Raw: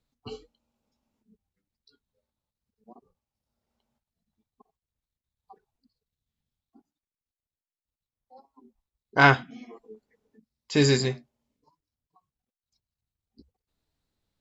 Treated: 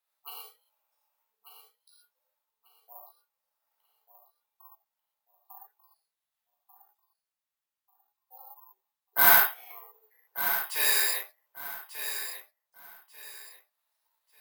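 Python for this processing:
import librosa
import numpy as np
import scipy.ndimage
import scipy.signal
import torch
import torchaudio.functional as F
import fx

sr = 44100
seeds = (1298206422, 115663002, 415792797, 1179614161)

y = scipy.signal.sosfilt(scipy.signal.cheby2(4, 70, 180.0, 'highpass', fs=sr, output='sos'), x)
y = fx.high_shelf(y, sr, hz=2800.0, db=-10.5)
y = 10.0 ** (-24.0 / 20.0) * np.tanh(y / 10.0 ** (-24.0 / 20.0))
y = fx.echo_feedback(y, sr, ms=1191, feedback_pct=27, wet_db=-10.0)
y = fx.rev_gated(y, sr, seeds[0], gate_ms=150, shape='flat', drr_db=-6.0)
y = (np.kron(y[::3], np.eye(3)[0]) * 3)[:len(y)]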